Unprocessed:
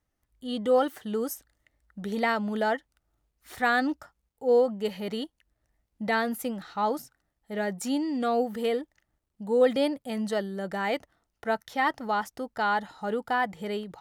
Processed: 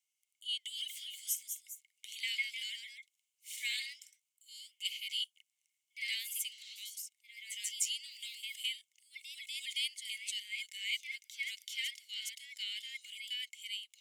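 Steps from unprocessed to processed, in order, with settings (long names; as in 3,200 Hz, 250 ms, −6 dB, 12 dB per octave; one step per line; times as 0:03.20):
delay with pitch and tempo change per echo 274 ms, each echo +1 semitone, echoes 2, each echo −6 dB
Chebyshev high-pass with heavy ripple 2,100 Hz, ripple 9 dB
level +7 dB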